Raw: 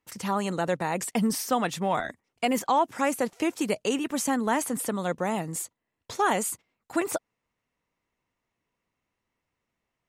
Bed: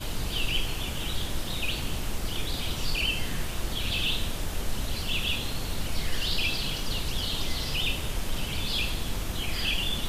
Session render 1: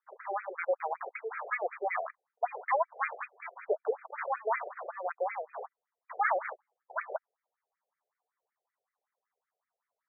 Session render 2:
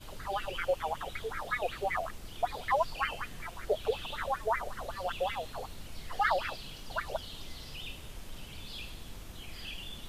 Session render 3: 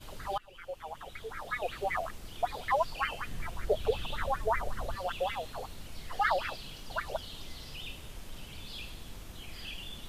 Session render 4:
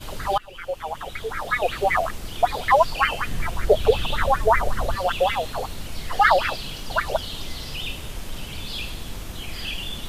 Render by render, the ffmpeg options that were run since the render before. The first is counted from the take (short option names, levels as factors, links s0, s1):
-af "acrusher=samples=15:mix=1:aa=0.000001,afftfilt=real='re*between(b*sr/1024,530*pow(1800/530,0.5+0.5*sin(2*PI*5.3*pts/sr))/1.41,530*pow(1800/530,0.5+0.5*sin(2*PI*5.3*pts/sr))*1.41)':imag='im*between(b*sr/1024,530*pow(1800/530,0.5+0.5*sin(2*PI*5.3*pts/sr))/1.41,530*pow(1800/530,0.5+0.5*sin(2*PI*5.3*pts/sr))*1.41)':win_size=1024:overlap=0.75"
-filter_complex "[1:a]volume=0.188[s0];[0:a][s0]amix=inputs=2:normalize=0"
-filter_complex "[0:a]asettb=1/sr,asplit=3[s0][s1][s2];[s0]atrim=end=3.274[s3];[s1]atrim=start=3.27:end=4.97,asetpts=PTS-STARTPTS,afade=t=in:d=0.004:c=qsin,afade=t=out:st=1.696:d=0.004:c=qsin,lowshelf=f=210:g=8.5[s4];[s2]atrim=start=4.966[s5];[s3][s4]acrossfade=d=0.004:c1=hsin:c2=qsin[s6];[s6][s5]acrossfade=d=0.004:c1=qsin:c2=hsin,asplit=2[s7][s8];[s7]atrim=end=0.38,asetpts=PTS-STARTPTS,afade=t=out:st=0.376:d=0.004:c=hsin:silence=0.0841395[s9];[s8]atrim=start=0.38,asetpts=PTS-STARTPTS,afade=t=in:d=1.52:silence=0.0841395[s10];[s9][s10]concat=n=2:v=0:a=1"
-af "volume=3.98"